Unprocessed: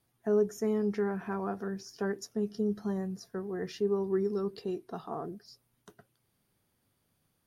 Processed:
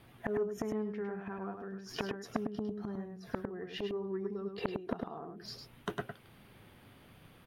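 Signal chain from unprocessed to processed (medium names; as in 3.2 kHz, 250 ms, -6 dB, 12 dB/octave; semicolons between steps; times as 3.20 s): resonant high shelf 4.1 kHz -11 dB, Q 1.5; inverted gate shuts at -34 dBFS, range -26 dB; on a send: delay 103 ms -6 dB; on the sum: transformer saturation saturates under 1.2 kHz; trim +18 dB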